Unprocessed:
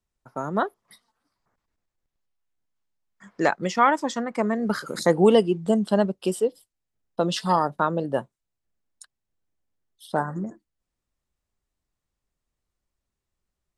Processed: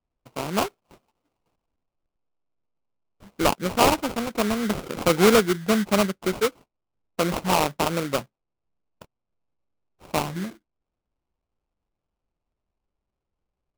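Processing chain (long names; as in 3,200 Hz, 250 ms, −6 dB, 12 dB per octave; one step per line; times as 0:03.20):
sample-rate reduction 1,800 Hz, jitter 20%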